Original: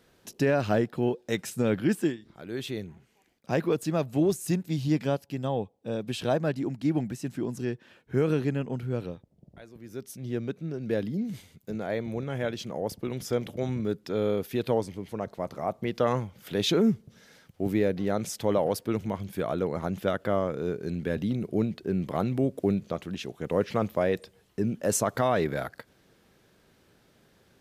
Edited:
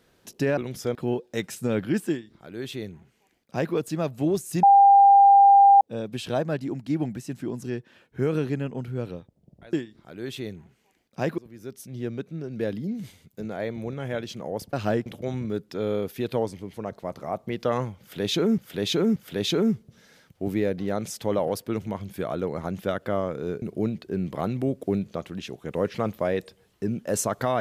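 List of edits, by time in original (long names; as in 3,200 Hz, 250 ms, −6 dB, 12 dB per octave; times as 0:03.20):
0:00.57–0:00.90: swap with 0:13.03–0:13.41
0:02.04–0:03.69: duplicate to 0:09.68
0:04.58–0:05.76: beep over 797 Hz −10.5 dBFS
0:16.35–0:16.93: repeat, 3 plays
0:20.81–0:21.38: remove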